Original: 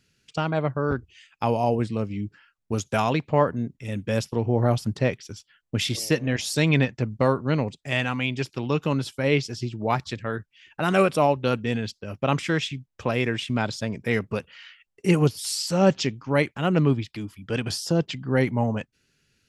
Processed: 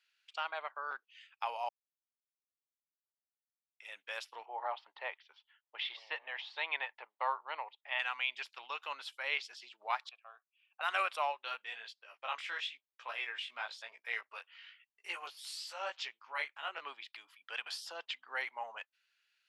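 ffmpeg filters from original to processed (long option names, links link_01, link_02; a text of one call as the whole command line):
ffmpeg -i in.wav -filter_complex "[0:a]asplit=3[link_01][link_02][link_03];[link_01]afade=type=out:start_time=4.45:duration=0.02[link_04];[link_02]highpass=frequency=300:width=0.5412,highpass=frequency=300:width=1.3066,equalizer=frequency=880:width_type=q:width=4:gain=8,equalizer=frequency=1500:width_type=q:width=4:gain=-5,equalizer=frequency=2500:width_type=q:width=4:gain=-4,lowpass=frequency=3300:width=0.5412,lowpass=frequency=3300:width=1.3066,afade=type=in:start_time=4.45:duration=0.02,afade=type=out:start_time=7.98:duration=0.02[link_05];[link_03]afade=type=in:start_time=7.98:duration=0.02[link_06];[link_04][link_05][link_06]amix=inputs=3:normalize=0,asettb=1/sr,asplit=3[link_07][link_08][link_09];[link_07]atrim=end=10.094[link_10];[link_08]atrim=start=10.09:end=10.81,asetpts=PTS-STARTPTS,afade=type=in:duration=0.004:curve=qsin,afade=type=out:start_time=0.716:duration=0.004:curve=qsin,asplit=3[link_11][link_12][link_13];[link_11]bandpass=frequency=730:width_type=q:width=8,volume=0dB[link_14];[link_12]bandpass=frequency=1090:width_type=q:width=8,volume=-6dB[link_15];[link_13]bandpass=frequency=2440:width_type=q:width=8,volume=-9dB[link_16];[link_14][link_15][link_16]amix=inputs=3:normalize=0[link_17];[link_09]atrim=start=10.806[link_18];[link_10][link_17]acrossfade=duration=0.004:curve1=hsin:curve2=qsin[link_19];[link_19][link_18]acrossfade=duration=0.004:curve1=qsin:curve2=hsin,asplit=3[link_20][link_21][link_22];[link_20]afade=type=out:start_time=11.31:duration=0.02[link_23];[link_21]flanger=delay=16.5:depth=4.5:speed=1,afade=type=in:start_time=11.31:duration=0.02,afade=type=out:start_time=16.81:duration=0.02[link_24];[link_22]afade=type=in:start_time=16.81:duration=0.02[link_25];[link_23][link_24][link_25]amix=inputs=3:normalize=0,asplit=3[link_26][link_27][link_28];[link_26]atrim=end=1.69,asetpts=PTS-STARTPTS,afade=type=out:start_time=1.686:duration=0.004:curve=hsin[link_29];[link_27]atrim=start=1.69:end=3.8,asetpts=PTS-STARTPTS,volume=0[link_30];[link_28]atrim=start=3.8,asetpts=PTS-STARTPTS,afade=type=in:duration=0.004:curve=hsin[link_31];[link_29][link_30][link_31]concat=n=3:v=0:a=1,highpass=frequency=840:width=0.5412,highpass=frequency=840:width=1.3066,highshelf=frequency=4700:width_type=q:width=1.5:gain=-7.5,volume=-7.5dB" out.wav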